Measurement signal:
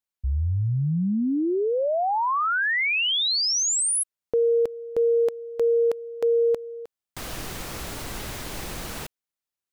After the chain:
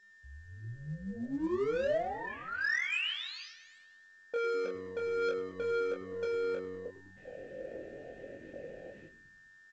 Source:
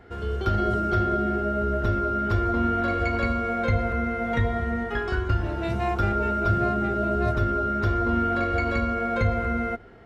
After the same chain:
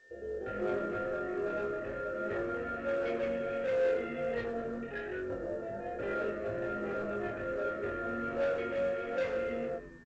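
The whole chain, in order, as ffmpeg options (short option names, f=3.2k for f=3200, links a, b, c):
-filter_complex "[0:a]aemphasis=mode=reproduction:type=75fm,afwtdn=0.0316,asplit=3[a][b][c];[a]bandpass=f=530:t=q:w=8,volume=0dB[d];[b]bandpass=f=1.84k:t=q:w=8,volume=-6dB[e];[c]bandpass=f=2.48k:t=q:w=8,volume=-9dB[f];[d][e][f]amix=inputs=3:normalize=0,aphaser=in_gain=1:out_gain=1:delay=1.3:decay=0.31:speed=1.3:type=sinusoidal,acrossover=split=630[g][h];[g]asoftclip=type=hard:threshold=-38dB[i];[i][h]amix=inputs=2:normalize=0,flanger=delay=17.5:depth=4.7:speed=0.31,aeval=exprs='val(0)+0.000355*sin(2*PI*1800*n/s)':c=same,asoftclip=type=tanh:threshold=-36dB,asplit=2[j][k];[k]adelay=25,volume=-4dB[l];[j][l]amix=inputs=2:normalize=0,asplit=2[m][n];[n]asplit=7[o][p][q][r][s][t][u];[o]adelay=102,afreqshift=-93,volume=-14.5dB[v];[p]adelay=204,afreqshift=-186,volume=-18.4dB[w];[q]adelay=306,afreqshift=-279,volume=-22.3dB[x];[r]adelay=408,afreqshift=-372,volume=-26.1dB[y];[s]adelay=510,afreqshift=-465,volume=-30dB[z];[t]adelay=612,afreqshift=-558,volume=-33.9dB[aa];[u]adelay=714,afreqshift=-651,volume=-37.8dB[ab];[v][w][x][y][z][aa][ab]amix=inputs=7:normalize=0[ac];[m][ac]amix=inputs=2:normalize=0,volume=7.5dB" -ar 16000 -c:a pcm_alaw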